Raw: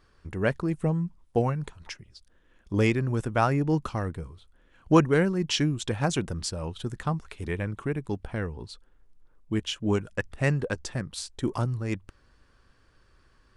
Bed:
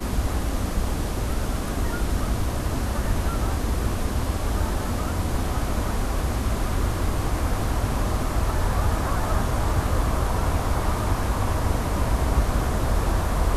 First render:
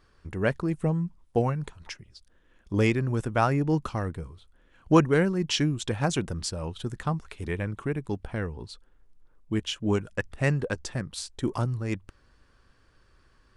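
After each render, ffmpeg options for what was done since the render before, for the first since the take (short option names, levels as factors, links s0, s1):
-af anull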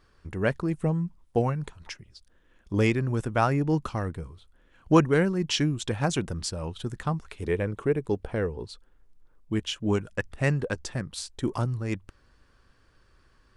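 -filter_complex "[0:a]asettb=1/sr,asplit=3[s0][s1][s2];[s0]atrim=end=7.424[s3];[s1]atrim=start=7.42:end=8.65,asetpts=PTS-STARTPTS,afade=t=in:d=0.004:c=qsin,afade=t=out:st=1.226:d=0.004:c=qsin,equalizer=f=460:w=1.8:g=8.5[s4];[s2]atrim=start=8.646[s5];[s3][s4]acrossfade=d=0.004:c1=hsin:c2=qsin[s6];[s6][s5]acrossfade=d=0.004:c1=qsin:c2=hsin"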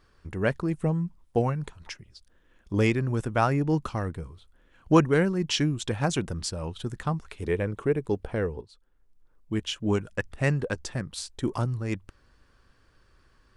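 -filter_complex "[0:a]asplit=2[s0][s1];[s0]atrim=end=8.61,asetpts=PTS-STARTPTS,afade=t=out:st=8.606:d=0.004:c=hsin:silence=0.188365[s2];[s1]atrim=start=8.61,asetpts=PTS-STARTPTS,afade=t=in:d=1.09:silence=0.188365[s3];[s2][s3]concat=n=2:v=0:a=1"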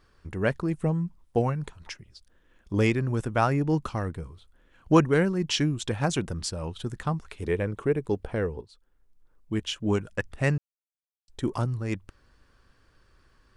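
-filter_complex "[0:a]asplit=3[s0][s1][s2];[s0]atrim=end=10.58,asetpts=PTS-STARTPTS,afade=t=out:st=10.576:d=0.004:c=hsin[s3];[s1]atrim=start=10.58:end=11.28,asetpts=PTS-STARTPTS,volume=0[s4];[s2]atrim=start=11.28,asetpts=PTS-STARTPTS,afade=t=in:d=0.004:c=hsin[s5];[s3][s4][s5]concat=n=3:v=0:a=1"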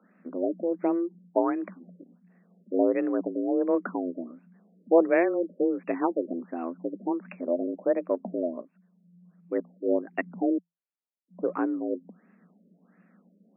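-af "afreqshift=170,afftfilt=real='re*lt(b*sr/1024,610*pow(2800/610,0.5+0.5*sin(2*PI*1.4*pts/sr)))':imag='im*lt(b*sr/1024,610*pow(2800/610,0.5+0.5*sin(2*PI*1.4*pts/sr)))':win_size=1024:overlap=0.75"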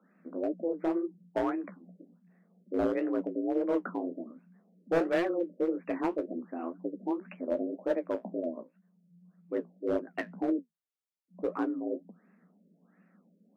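-af "asoftclip=type=hard:threshold=0.119,flanger=delay=9.1:depth=10:regen=-44:speed=1.9:shape=triangular"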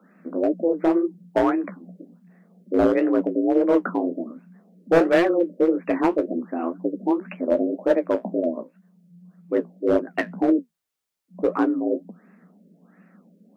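-af "volume=3.35"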